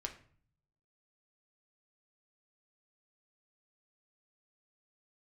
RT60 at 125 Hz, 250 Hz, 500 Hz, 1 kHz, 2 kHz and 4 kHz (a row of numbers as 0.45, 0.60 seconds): 1.0, 0.75, 0.50, 0.50, 0.45, 0.35 seconds